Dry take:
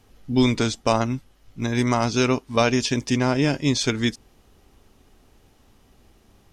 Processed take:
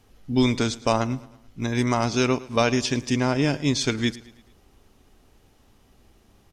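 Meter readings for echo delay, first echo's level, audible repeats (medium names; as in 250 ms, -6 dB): 109 ms, -20.0 dB, 3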